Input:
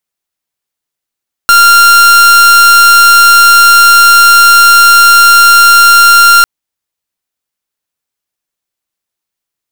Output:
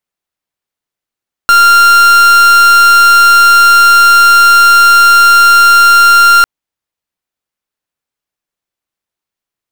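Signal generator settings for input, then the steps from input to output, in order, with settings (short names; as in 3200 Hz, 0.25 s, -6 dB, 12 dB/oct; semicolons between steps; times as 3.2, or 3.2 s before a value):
pulse 1390 Hz, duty 43% -3 dBFS 4.95 s
high shelf 3800 Hz -7.5 dB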